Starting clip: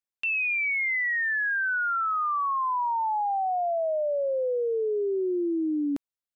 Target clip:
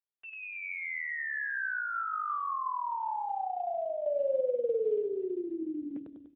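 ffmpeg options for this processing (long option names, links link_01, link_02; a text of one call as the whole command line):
ffmpeg -i in.wav -filter_complex "[0:a]asettb=1/sr,asplit=3[link_01][link_02][link_03];[link_01]atrim=end=2.394[link_04];[link_02]atrim=start=2.39:end=2.97,asetpts=PTS-STARTPTS,afade=type=in:duration=0.004:curve=qsin,afade=type=out:start_time=0.576:duration=0.004:curve=qsin,asubboost=boost=12:cutoff=64[link_05];[link_03]atrim=start=2.966[link_06];[link_04][link_05]acrossfade=duration=0.004:curve1=hsin:curve2=qsin[link_07];[link_07][link_06]acrossfade=duration=0.004:curve1=qsin:curve2=hsin,asettb=1/sr,asplit=3[link_08][link_09][link_10];[link_08]atrim=end=4.064[link_11];[link_09]atrim=start=4.06:end=4.98,asetpts=PTS-STARTPTS,afade=type=in:duration=0.004:curve=qsin,afade=type=out:start_time=0.916:duration=0.004:curve=qsin,acontrast=29[link_12];[link_10]atrim=start=4.976[link_13];[link_11][link_12]acrossfade=duration=0.004:curve1=hsin:curve2=qsin[link_14];[link_14][link_13]acrossfade=duration=0.004:curve1=qsin:curve2=hsin,lowpass=frequency=2100:width=0.5412,lowpass=frequency=2100:width=1.3066,aecho=1:1:98|196|294|392|490|588|686:0.562|0.298|0.158|0.0837|0.0444|0.0235|0.0125,volume=-6.5dB" -ar 8000 -c:a libopencore_amrnb -b:a 7950 out.amr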